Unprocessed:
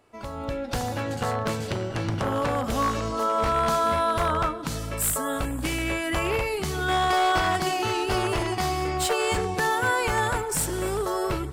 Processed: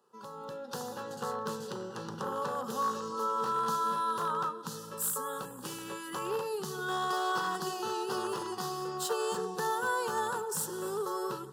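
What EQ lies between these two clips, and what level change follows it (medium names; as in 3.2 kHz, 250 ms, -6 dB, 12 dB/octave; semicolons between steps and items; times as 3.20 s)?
Bessel high-pass 200 Hz, order 4; peaking EQ 8.4 kHz -4 dB 0.3 oct; static phaser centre 440 Hz, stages 8; -5.0 dB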